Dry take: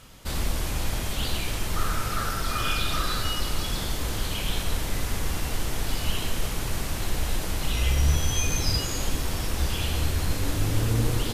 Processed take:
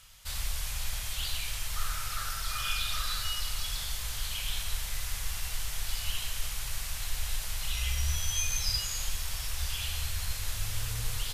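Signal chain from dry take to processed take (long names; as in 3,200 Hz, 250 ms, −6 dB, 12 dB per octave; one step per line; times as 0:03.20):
guitar amp tone stack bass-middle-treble 10-0-10
level −1 dB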